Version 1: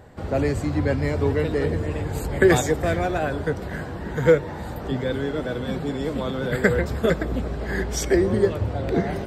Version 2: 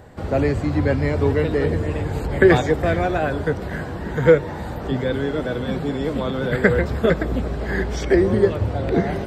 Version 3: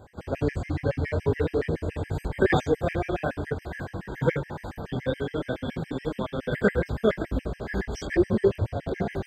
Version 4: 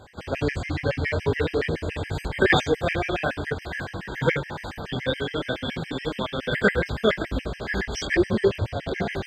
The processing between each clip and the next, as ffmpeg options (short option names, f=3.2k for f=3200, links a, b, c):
-filter_complex "[0:a]acrossover=split=4400[a][b];[b]acompressor=threshold=-54dB:ratio=4:attack=1:release=60[c];[a][c]amix=inputs=2:normalize=0,volume=3dB"
-af "flanger=delay=19.5:depth=6:speed=2.3,afftfilt=real='re*gt(sin(2*PI*7.1*pts/sr)*(1-2*mod(floor(b*sr/1024/1600),2)),0)':imag='im*gt(sin(2*PI*7.1*pts/sr)*(1-2*mod(floor(b*sr/1024/1600),2)),0)':win_size=1024:overlap=0.75,volume=-1dB"
-af "equalizer=f=3.4k:t=o:w=2.6:g=11.5"